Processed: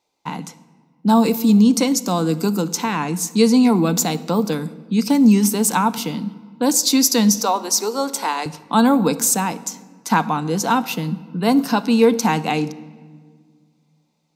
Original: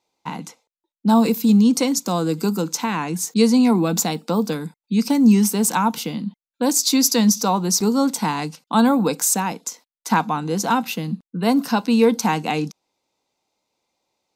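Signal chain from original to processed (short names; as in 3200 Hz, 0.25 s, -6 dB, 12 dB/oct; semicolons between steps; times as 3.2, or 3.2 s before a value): 7.36–8.46 HPF 380 Hz 24 dB/oct; shoebox room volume 2400 m³, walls mixed, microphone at 0.35 m; gain +1.5 dB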